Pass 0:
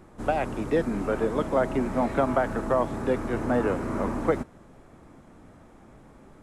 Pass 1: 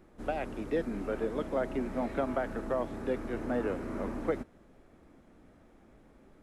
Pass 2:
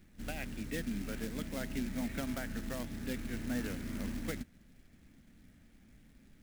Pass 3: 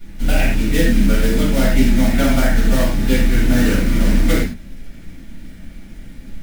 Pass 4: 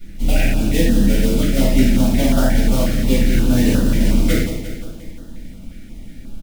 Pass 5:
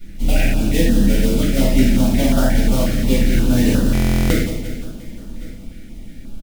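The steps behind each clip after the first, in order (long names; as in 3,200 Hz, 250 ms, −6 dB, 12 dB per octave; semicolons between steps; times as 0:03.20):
octave-band graphic EQ 125/1,000/8,000 Hz −7/−6/−6 dB; level −5.5 dB
floating-point word with a short mantissa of 2 bits; flat-topped bell 650 Hz −14 dB 2.3 octaves; level +1 dB
convolution reverb, pre-delay 3 ms, DRR −11.5 dB; level +6.5 dB
on a send: repeating echo 175 ms, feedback 58%, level −9 dB; on the sum: notch on a step sequencer 5.6 Hz 970–2,200 Hz
single-tap delay 1,119 ms −22.5 dB; buffer that repeats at 0:03.93, samples 1,024, times 15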